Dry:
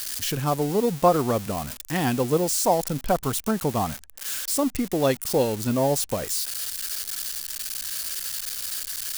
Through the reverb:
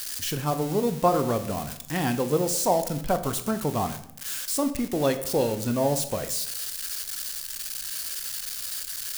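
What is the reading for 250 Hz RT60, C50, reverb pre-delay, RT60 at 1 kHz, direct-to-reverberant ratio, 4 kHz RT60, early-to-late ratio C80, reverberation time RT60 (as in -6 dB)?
0.85 s, 12.5 dB, 16 ms, 0.60 s, 8.5 dB, 0.50 s, 15.0 dB, 0.70 s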